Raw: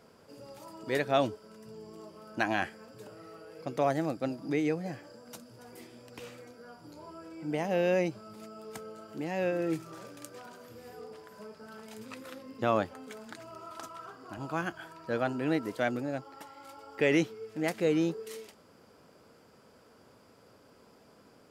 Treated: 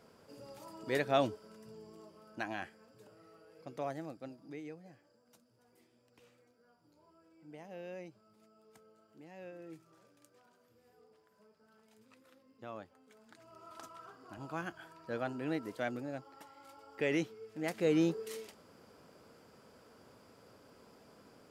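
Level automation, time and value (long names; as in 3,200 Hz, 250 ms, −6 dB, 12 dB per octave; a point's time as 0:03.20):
0:01.44 −3 dB
0:02.59 −11 dB
0:03.83 −11 dB
0:04.90 −19 dB
0:13.04 −19 dB
0:13.74 −7 dB
0:17.59 −7 dB
0:18.00 −1 dB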